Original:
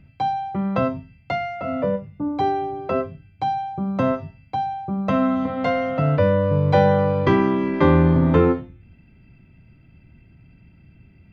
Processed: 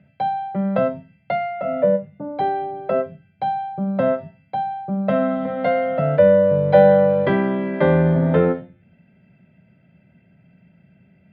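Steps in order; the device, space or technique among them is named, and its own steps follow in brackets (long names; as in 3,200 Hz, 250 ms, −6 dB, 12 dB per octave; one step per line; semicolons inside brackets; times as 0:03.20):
kitchen radio (loudspeaker in its box 180–3,600 Hz, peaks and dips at 180 Hz +7 dB, 310 Hz −10 dB, 600 Hz +10 dB, 1,100 Hz −10 dB, 1,600 Hz +4 dB, 2,600 Hz −5 dB)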